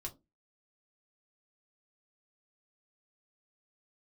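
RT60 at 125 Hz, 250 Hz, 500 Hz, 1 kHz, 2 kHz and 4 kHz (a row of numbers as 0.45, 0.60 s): 0.30, 0.35, 0.25, 0.20, 0.10, 0.15 s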